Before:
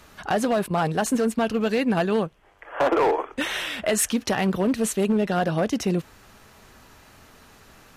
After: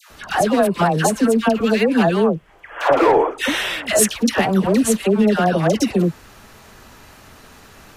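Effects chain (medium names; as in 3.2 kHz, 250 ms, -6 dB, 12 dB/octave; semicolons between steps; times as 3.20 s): phase dispersion lows, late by 104 ms, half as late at 990 Hz; trim +6.5 dB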